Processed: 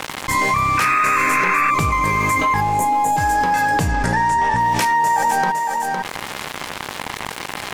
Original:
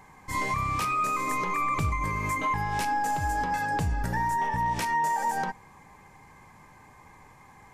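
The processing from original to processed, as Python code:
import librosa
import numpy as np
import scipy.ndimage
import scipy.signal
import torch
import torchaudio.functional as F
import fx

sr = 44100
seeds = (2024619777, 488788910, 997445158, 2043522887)

y = fx.cheby1_bandstop(x, sr, low_hz=890.0, high_hz=6700.0, order=5, at=(2.6, 3.16), fade=0.02)
y = np.sign(y) * np.maximum(np.abs(y) - 10.0 ** (-48.0 / 20.0), 0.0)
y = fx.low_shelf(y, sr, hz=130.0, db=-9.5)
y = y + 10.0 ** (-14.0 / 20.0) * np.pad(y, (int(509 * sr / 1000.0), 0))[:len(y)]
y = fx.spec_paint(y, sr, seeds[0], shape='noise', start_s=0.77, length_s=0.94, low_hz=1000.0, high_hz=2700.0, level_db=-32.0)
y = fx.lowpass(y, sr, hz=9700.0, slope=24, at=(3.91, 4.61))
y = fx.env_flatten(y, sr, amount_pct=70)
y = y * librosa.db_to_amplitude(8.5)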